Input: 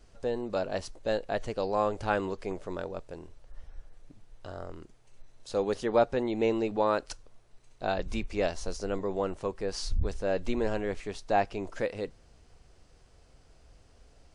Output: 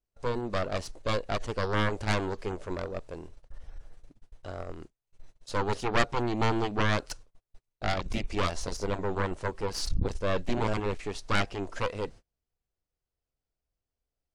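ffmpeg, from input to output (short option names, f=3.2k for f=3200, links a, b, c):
-af "agate=range=-33dB:threshold=-47dB:ratio=16:detection=peak,aeval=exprs='0.251*(cos(1*acos(clip(val(0)/0.251,-1,1)))-cos(1*PI/2))+0.1*(cos(3*acos(clip(val(0)/0.251,-1,1)))-cos(3*PI/2))+0.0562*(cos(6*acos(clip(val(0)/0.251,-1,1)))-cos(6*PI/2))+0.0398*(cos(7*acos(clip(val(0)/0.251,-1,1)))-cos(7*PI/2))':c=same"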